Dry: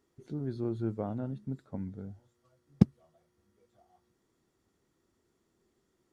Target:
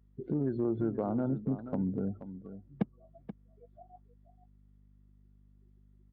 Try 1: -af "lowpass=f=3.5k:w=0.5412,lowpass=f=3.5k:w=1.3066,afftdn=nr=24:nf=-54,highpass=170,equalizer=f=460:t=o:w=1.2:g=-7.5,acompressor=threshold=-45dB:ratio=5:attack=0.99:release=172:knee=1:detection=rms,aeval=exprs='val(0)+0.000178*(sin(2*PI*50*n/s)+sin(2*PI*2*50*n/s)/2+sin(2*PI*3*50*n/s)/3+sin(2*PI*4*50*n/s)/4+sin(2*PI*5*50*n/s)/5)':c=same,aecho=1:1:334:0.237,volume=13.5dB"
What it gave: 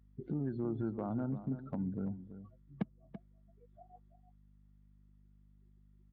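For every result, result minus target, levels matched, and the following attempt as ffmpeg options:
echo 0.146 s early; compressor: peak gain reduction +3.5 dB; 500 Hz band -3.0 dB
-af "lowpass=f=3.5k:w=0.5412,lowpass=f=3.5k:w=1.3066,afftdn=nr=24:nf=-54,highpass=170,equalizer=f=460:t=o:w=1.2:g=-7.5,acompressor=threshold=-45dB:ratio=5:attack=0.99:release=172:knee=1:detection=rms,aeval=exprs='val(0)+0.000178*(sin(2*PI*50*n/s)+sin(2*PI*2*50*n/s)/2+sin(2*PI*3*50*n/s)/3+sin(2*PI*4*50*n/s)/4+sin(2*PI*5*50*n/s)/5)':c=same,aecho=1:1:480:0.237,volume=13.5dB"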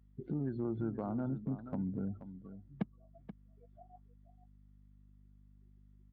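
compressor: peak gain reduction +3.5 dB; 500 Hz band -2.5 dB
-af "lowpass=f=3.5k:w=0.5412,lowpass=f=3.5k:w=1.3066,afftdn=nr=24:nf=-54,highpass=170,equalizer=f=460:t=o:w=1.2:g=-7.5,acompressor=threshold=-39dB:ratio=5:attack=0.99:release=172:knee=1:detection=rms,aeval=exprs='val(0)+0.000178*(sin(2*PI*50*n/s)+sin(2*PI*2*50*n/s)/2+sin(2*PI*3*50*n/s)/3+sin(2*PI*4*50*n/s)/4+sin(2*PI*5*50*n/s)/5)':c=same,aecho=1:1:480:0.237,volume=13.5dB"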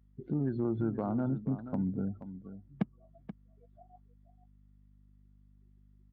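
500 Hz band -3.0 dB
-af "lowpass=f=3.5k:w=0.5412,lowpass=f=3.5k:w=1.3066,afftdn=nr=24:nf=-54,highpass=170,acompressor=threshold=-39dB:ratio=5:attack=0.99:release=172:knee=1:detection=rms,aeval=exprs='val(0)+0.000178*(sin(2*PI*50*n/s)+sin(2*PI*2*50*n/s)/2+sin(2*PI*3*50*n/s)/3+sin(2*PI*4*50*n/s)/4+sin(2*PI*5*50*n/s)/5)':c=same,aecho=1:1:480:0.237,volume=13.5dB"

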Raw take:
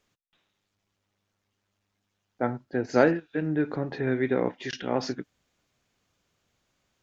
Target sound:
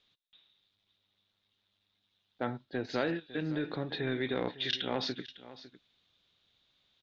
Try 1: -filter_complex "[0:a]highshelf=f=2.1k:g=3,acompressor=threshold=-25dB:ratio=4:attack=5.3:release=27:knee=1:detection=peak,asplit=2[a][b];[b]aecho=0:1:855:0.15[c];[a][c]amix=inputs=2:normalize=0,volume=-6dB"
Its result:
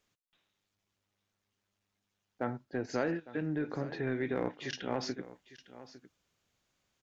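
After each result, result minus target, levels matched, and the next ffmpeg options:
echo 0.301 s late; 4000 Hz band -8.5 dB
-filter_complex "[0:a]highshelf=f=2.1k:g=3,acompressor=threshold=-25dB:ratio=4:attack=5.3:release=27:knee=1:detection=peak,asplit=2[a][b];[b]aecho=0:1:554:0.15[c];[a][c]amix=inputs=2:normalize=0,volume=-6dB"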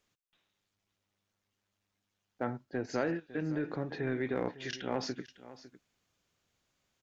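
4000 Hz band -8.5 dB
-filter_complex "[0:a]highshelf=f=2.1k:g=3,acompressor=threshold=-25dB:ratio=4:attack=5.3:release=27:knee=1:detection=peak,lowpass=f=3.7k:t=q:w=7.7,asplit=2[a][b];[b]aecho=0:1:554:0.15[c];[a][c]amix=inputs=2:normalize=0,volume=-6dB"

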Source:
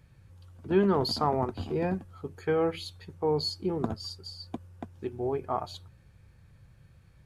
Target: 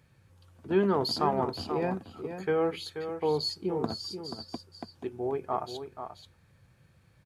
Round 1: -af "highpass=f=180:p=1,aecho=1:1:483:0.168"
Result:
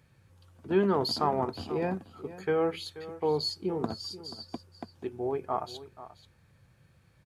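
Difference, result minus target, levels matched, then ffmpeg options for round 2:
echo-to-direct -6.5 dB
-af "highpass=f=180:p=1,aecho=1:1:483:0.355"

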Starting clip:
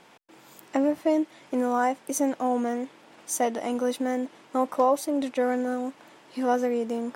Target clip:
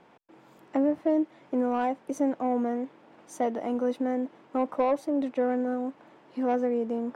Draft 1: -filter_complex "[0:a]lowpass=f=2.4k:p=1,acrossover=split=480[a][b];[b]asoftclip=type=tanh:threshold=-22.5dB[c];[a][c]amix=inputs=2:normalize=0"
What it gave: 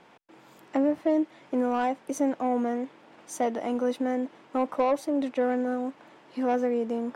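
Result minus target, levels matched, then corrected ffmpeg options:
2000 Hz band +3.0 dB
-filter_complex "[0:a]lowpass=f=1k:p=1,acrossover=split=480[a][b];[b]asoftclip=type=tanh:threshold=-22.5dB[c];[a][c]amix=inputs=2:normalize=0"

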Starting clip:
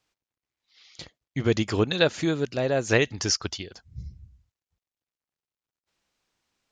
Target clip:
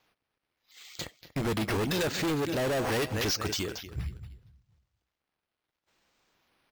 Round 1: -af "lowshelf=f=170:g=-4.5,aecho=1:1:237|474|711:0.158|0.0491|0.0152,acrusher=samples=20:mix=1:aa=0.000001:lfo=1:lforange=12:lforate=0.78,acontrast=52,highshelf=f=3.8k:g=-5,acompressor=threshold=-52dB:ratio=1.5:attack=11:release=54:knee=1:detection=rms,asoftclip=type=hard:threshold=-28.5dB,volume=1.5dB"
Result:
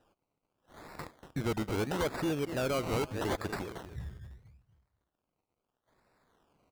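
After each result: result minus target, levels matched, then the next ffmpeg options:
compressor: peak gain reduction +14.5 dB; decimation with a swept rate: distortion +8 dB
-af "lowshelf=f=170:g=-4.5,aecho=1:1:237|474|711:0.158|0.0491|0.0152,acrusher=samples=20:mix=1:aa=0.000001:lfo=1:lforange=12:lforate=0.78,acontrast=52,highshelf=f=3.8k:g=-5,asoftclip=type=hard:threshold=-28.5dB,volume=1.5dB"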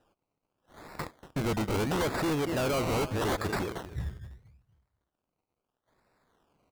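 decimation with a swept rate: distortion +8 dB
-af "lowshelf=f=170:g=-4.5,aecho=1:1:237|474|711:0.158|0.0491|0.0152,acrusher=samples=5:mix=1:aa=0.000001:lfo=1:lforange=3:lforate=0.78,acontrast=52,highshelf=f=3.8k:g=-5,asoftclip=type=hard:threshold=-28.5dB,volume=1.5dB"

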